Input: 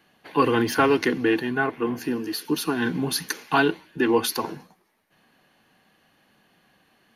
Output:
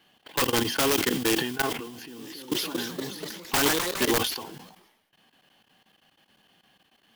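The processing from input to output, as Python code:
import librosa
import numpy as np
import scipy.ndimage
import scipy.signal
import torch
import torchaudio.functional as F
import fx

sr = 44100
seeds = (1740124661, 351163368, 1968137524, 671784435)

y = fx.mod_noise(x, sr, seeds[0], snr_db=12)
y = fx.graphic_eq_31(y, sr, hz=(800, 3150, 5000), db=(3, 11, 4))
y = (np.mod(10.0 ** (11.0 / 20.0) * y + 1.0, 2.0) - 1.0) / 10.0 ** (11.0 / 20.0)
y = fx.level_steps(y, sr, step_db=20)
y = fx.echo_pitch(y, sr, ms=299, semitones=2, count=3, db_per_echo=-3.0, at=(1.89, 4.15))
y = fx.sustainer(y, sr, db_per_s=62.0)
y = y * librosa.db_to_amplitude(-2.5)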